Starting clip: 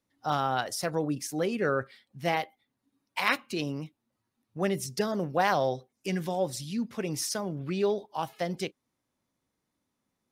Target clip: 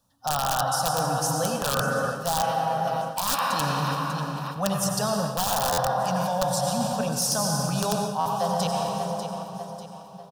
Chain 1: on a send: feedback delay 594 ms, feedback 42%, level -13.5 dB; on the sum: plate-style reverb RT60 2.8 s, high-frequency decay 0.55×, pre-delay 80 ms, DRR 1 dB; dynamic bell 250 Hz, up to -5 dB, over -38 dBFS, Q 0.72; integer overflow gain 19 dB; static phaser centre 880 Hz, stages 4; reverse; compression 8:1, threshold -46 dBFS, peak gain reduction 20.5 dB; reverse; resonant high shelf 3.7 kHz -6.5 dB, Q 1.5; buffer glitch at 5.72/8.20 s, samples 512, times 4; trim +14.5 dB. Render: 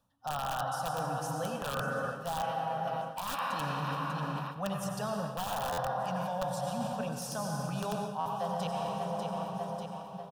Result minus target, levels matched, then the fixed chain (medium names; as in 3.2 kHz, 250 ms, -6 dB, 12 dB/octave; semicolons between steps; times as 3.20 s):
compression: peak gain reduction +9 dB; 8 kHz band -7.0 dB
on a send: feedback delay 594 ms, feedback 42%, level -13.5 dB; on the sum: plate-style reverb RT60 2.8 s, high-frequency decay 0.55×, pre-delay 80 ms, DRR 1 dB; dynamic bell 250 Hz, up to -5 dB, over -38 dBFS, Q 0.72; integer overflow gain 19 dB; static phaser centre 880 Hz, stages 4; reverse; compression 8:1, threshold -36 dBFS, peak gain reduction 11.5 dB; reverse; buffer glitch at 5.72/8.20 s, samples 512, times 4; trim +14.5 dB